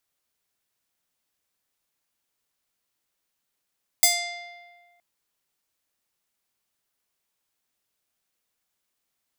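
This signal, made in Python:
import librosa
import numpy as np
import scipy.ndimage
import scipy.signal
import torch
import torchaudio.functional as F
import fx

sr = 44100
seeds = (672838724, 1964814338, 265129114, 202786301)

y = fx.pluck(sr, length_s=0.97, note=77, decay_s=1.64, pick=0.49, brightness='bright')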